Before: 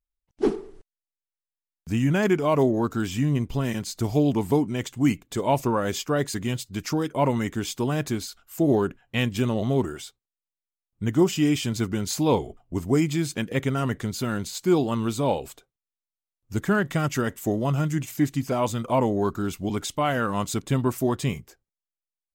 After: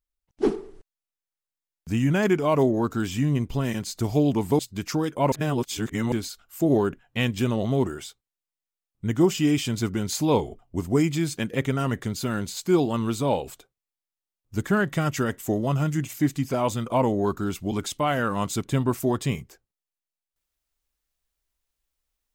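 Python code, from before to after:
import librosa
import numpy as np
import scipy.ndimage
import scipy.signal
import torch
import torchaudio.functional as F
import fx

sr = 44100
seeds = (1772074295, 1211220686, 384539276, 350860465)

y = fx.edit(x, sr, fx.cut(start_s=4.59, length_s=1.98),
    fx.reverse_span(start_s=7.3, length_s=0.8), tone=tone)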